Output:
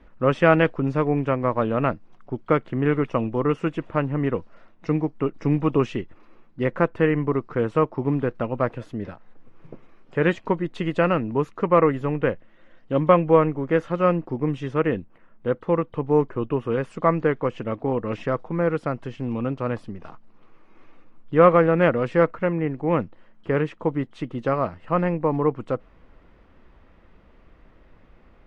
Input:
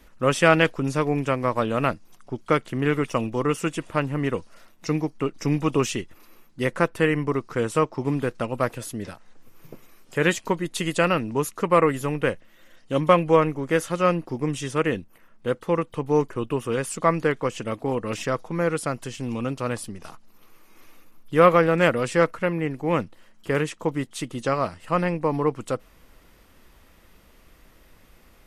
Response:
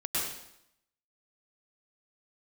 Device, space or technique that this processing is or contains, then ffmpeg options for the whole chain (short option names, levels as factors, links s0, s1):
phone in a pocket: -af "lowpass=3200,highshelf=f=2300:g=-11,volume=1.26"